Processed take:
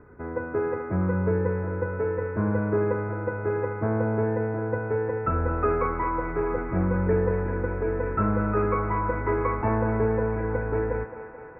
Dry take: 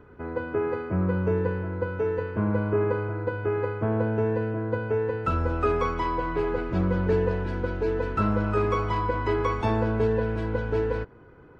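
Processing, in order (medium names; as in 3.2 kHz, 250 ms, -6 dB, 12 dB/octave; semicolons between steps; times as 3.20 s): steep low-pass 2.3 kHz 72 dB/octave; on a send: thinning echo 218 ms, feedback 77%, high-pass 240 Hz, level -11 dB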